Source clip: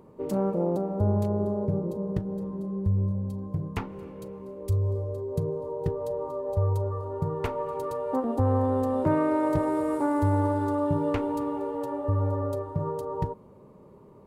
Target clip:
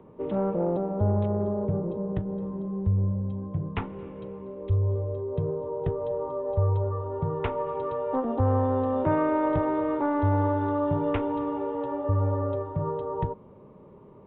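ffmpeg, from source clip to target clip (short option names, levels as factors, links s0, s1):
-filter_complex "[0:a]acrossover=split=130|420|1800[s0][s1][s2][s3];[s1]asoftclip=type=tanh:threshold=0.0335[s4];[s0][s4][s2][s3]amix=inputs=4:normalize=0,aresample=8000,aresample=44100,volume=1.19"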